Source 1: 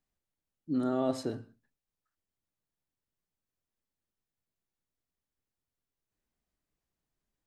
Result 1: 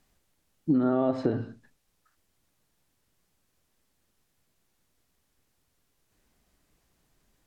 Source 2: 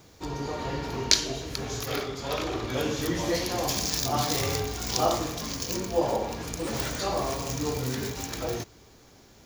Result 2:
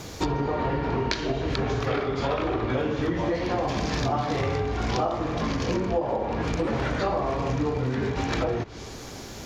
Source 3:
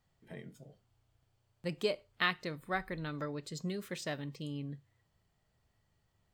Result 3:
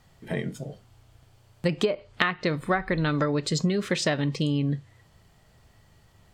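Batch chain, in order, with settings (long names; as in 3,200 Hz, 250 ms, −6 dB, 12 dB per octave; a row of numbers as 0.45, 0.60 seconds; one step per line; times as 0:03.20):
treble cut that deepens with the level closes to 2,100 Hz, closed at −29.5 dBFS
downward compressor 12 to 1, threshold −38 dBFS
loudness normalisation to −27 LKFS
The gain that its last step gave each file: +17.0, +15.5, +18.0 decibels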